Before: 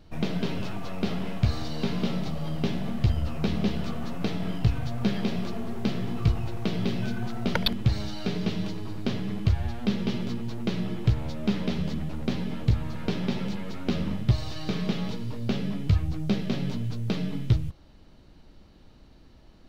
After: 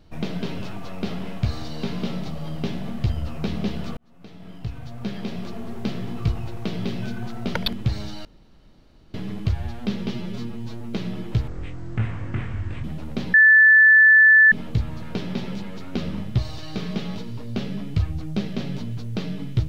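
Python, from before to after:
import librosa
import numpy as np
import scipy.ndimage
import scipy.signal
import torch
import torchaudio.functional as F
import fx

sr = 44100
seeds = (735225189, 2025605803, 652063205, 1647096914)

y = fx.edit(x, sr, fx.fade_in_span(start_s=3.97, length_s=1.77),
    fx.room_tone_fill(start_s=8.25, length_s=0.89),
    fx.stretch_span(start_s=10.12, length_s=0.55, factor=1.5),
    fx.speed_span(start_s=11.2, length_s=0.75, speed=0.55),
    fx.insert_tone(at_s=12.45, length_s=1.18, hz=1750.0, db=-9.0), tone=tone)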